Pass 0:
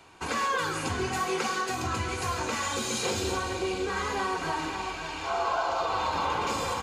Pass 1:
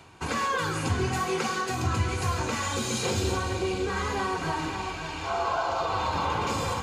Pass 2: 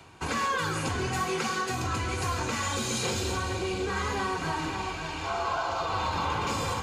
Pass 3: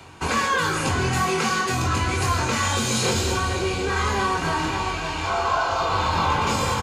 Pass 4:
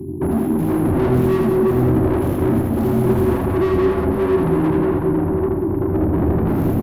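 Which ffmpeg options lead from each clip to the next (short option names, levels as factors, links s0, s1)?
-af "areverse,acompressor=mode=upward:threshold=0.0126:ratio=2.5,areverse,equalizer=f=110:t=o:w=1.8:g=9"
-filter_complex "[0:a]acrossover=split=360|900[s0][s1][s2];[s0]asoftclip=type=hard:threshold=0.0282[s3];[s1]alimiter=level_in=2.11:limit=0.0631:level=0:latency=1:release=261,volume=0.473[s4];[s3][s4][s2]amix=inputs=3:normalize=0"
-filter_complex "[0:a]asplit=2[s0][s1];[s1]adelay=23,volume=0.596[s2];[s0][s2]amix=inputs=2:normalize=0,volume=2"
-filter_complex "[0:a]afftfilt=real='re*(1-between(b*sr/4096,390,11000))':imag='im*(1-between(b*sr/4096,390,11000))':win_size=4096:overlap=0.75,asplit=2[s0][s1];[s1]highpass=f=720:p=1,volume=56.2,asoftclip=type=tanh:threshold=0.158[s2];[s0][s2]amix=inputs=2:normalize=0,lowpass=f=1100:p=1,volume=0.501,aecho=1:1:80|184|319.2|495|723.4:0.631|0.398|0.251|0.158|0.1,volume=1.58"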